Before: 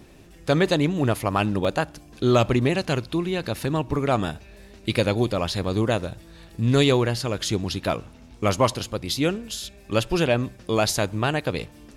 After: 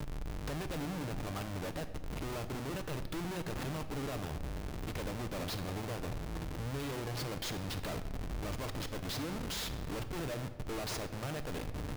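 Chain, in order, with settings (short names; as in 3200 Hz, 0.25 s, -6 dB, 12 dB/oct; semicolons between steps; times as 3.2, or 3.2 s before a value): median filter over 3 samples; compressor 16:1, threshold -34 dBFS, peak gain reduction 21 dB; Schmitt trigger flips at -44 dBFS; on a send: reverb RT60 1.2 s, pre-delay 7 ms, DRR 8.5 dB; on the sum: gain +1 dB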